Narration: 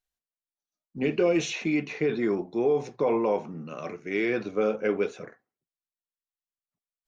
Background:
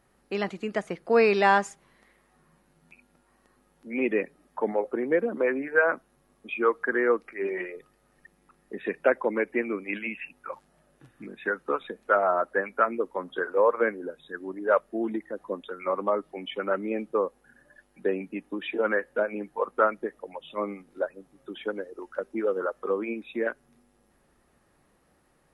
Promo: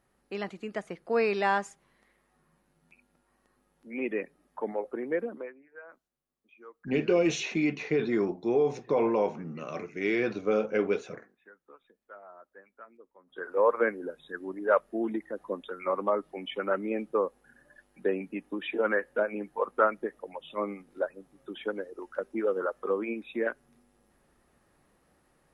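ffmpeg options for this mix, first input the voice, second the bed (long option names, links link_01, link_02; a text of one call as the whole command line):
ffmpeg -i stem1.wav -i stem2.wav -filter_complex "[0:a]adelay=5900,volume=-1dB[link_01];[1:a]volume=19dB,afade=type=out:start_time=5.23:duration=0.3:silence=0.0944061,afade=type=in:start_time=13.26:duration=0.41:silence=0.0562341[link_02];[link_01][link_02]amix=inputs=2:normalize=0" out.wav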